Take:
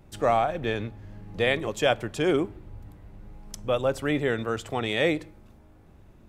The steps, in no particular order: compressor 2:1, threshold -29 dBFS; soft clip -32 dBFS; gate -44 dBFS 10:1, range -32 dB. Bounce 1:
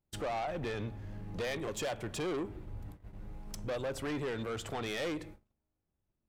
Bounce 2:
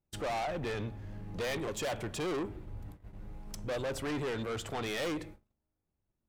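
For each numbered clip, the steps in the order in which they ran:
gate > compressor > soft clip; gate > soft clip > compressor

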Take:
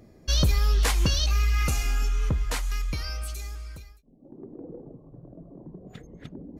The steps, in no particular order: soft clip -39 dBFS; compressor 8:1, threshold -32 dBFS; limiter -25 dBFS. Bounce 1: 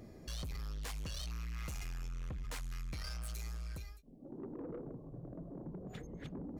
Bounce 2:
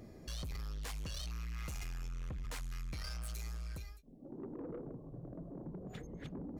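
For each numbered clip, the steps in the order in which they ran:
compressor > limiter > soft clip; limiter > compressor > soft clip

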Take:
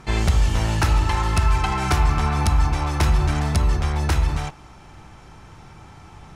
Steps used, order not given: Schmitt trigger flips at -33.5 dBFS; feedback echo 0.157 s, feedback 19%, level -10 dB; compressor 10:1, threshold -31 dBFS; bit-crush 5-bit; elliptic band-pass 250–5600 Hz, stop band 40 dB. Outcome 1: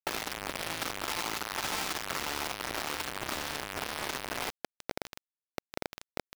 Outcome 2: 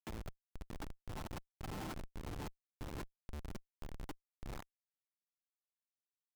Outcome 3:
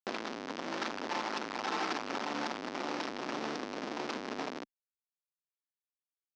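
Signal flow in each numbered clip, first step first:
Schmitt trigger > elliptic band-pass > compressor > feedback echo > bit-crush; feedback echo > bit-crush > compressor > elliptic band-pass > Schmitt trigger; feedback echo > bit-crush > Schmitt trigger > compressor > elliptic band-pass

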